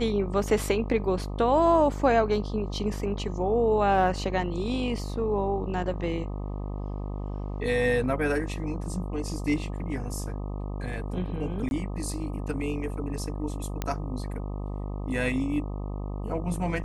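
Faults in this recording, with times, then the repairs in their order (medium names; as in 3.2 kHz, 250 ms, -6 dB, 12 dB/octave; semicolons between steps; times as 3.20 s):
buzz 50 Hz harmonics 25 -33 dBFS
11.69–11.71 s: dropout 21 ms
13.82 s: pop -14 dBFS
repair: de-click; de-hum 50 Hz, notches 25; interpolate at 11.69 s, 21 ms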